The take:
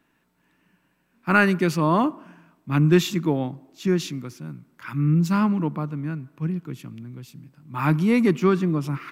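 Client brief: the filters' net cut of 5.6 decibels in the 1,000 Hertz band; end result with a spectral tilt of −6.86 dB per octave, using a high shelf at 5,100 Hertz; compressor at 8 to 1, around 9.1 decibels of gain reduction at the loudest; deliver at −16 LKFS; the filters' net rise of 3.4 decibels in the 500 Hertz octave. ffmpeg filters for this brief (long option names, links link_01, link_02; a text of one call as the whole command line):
ffmpeg -i in.wav -af "equalizer=frequency=500:width_type=o:gain=7,equalizer=frequency=1000:width_type=o:gain=-9,highshelf=frequency=5100:gain=-3.5,acompressor=threshold=-19dB:ratio=8,volume=10dB" out.wav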